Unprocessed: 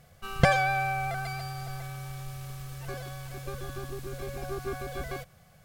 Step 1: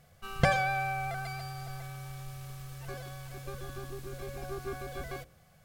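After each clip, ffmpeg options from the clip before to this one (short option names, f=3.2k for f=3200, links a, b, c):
-af "bandreject=f=59.52:t=h:w=4,bandreject=f=119.04:t=h:w=4,bandreject=f=178.56:t=h:w=4,bandreject=f=238.08:t=h:w=4,bandreject=f=297.6:t=h:w=4,bandreject=f=357.12:t=h:w=4,bandreject=f=416.64:t=h:w=4,bandreject=f=476.16:t=h:w=4,bandreject=f=535.68:t=h:w=4,bandreject=f=595.2:t=h:w=4,volume=-3.5dB"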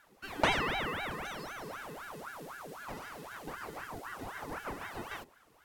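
-af "aeval=exprs='val(0)*sin(2*PI*930*n/s+930*0.7/3.9*sin(2*PI*3.9*n/s))':c=same"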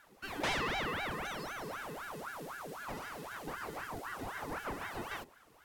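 -af "asoftclip=type=tanh:threshold=-30.5dB,volume=1.5dB"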